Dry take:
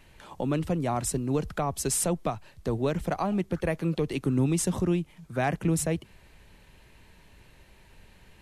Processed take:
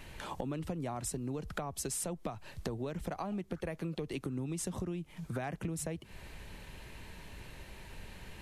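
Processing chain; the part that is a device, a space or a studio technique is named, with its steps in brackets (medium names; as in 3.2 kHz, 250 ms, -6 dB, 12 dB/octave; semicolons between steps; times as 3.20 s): serial compression, peaks first (compression, threshold -35 dBFS, peak gain reduction 14 dB; compression 2:1, threshold -45 dBFS, peak gain reduction 7.5 dB); trim +6 dB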